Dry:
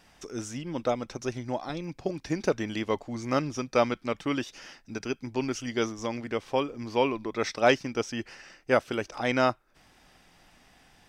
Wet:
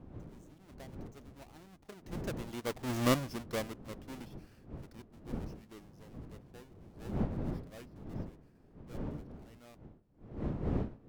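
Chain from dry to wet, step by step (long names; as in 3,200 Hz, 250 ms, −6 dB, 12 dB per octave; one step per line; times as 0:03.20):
each half-wave held at its own peak
source passing by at 0:02.98, 28 m/s, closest 3.1 metres
wind on the microphone 250 Hz −40 dBFS
level −3 dB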